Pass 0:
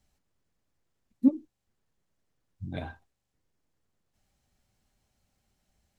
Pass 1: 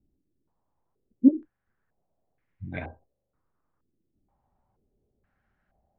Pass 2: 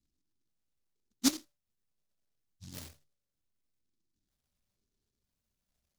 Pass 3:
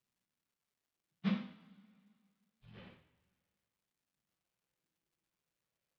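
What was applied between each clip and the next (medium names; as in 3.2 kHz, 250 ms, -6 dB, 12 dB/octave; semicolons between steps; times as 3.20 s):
step-sequenced low-pass 2.1 Hz 320–2100 Hz
hum notches 50/100/150 Hz; feedback comb 580 Hz, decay 0.33 s, mix 60%; delay time shaken by noise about 5 kHz, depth 0.39 ms; trim -3 dB
mistuned SSB -66 Hz 160–3100 Hz; two-slope reverb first 0.51 s, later 2.1 s, from -20 dB, DRR -4 dB; crackle 470 per s -67 dBFS; trim -8 dB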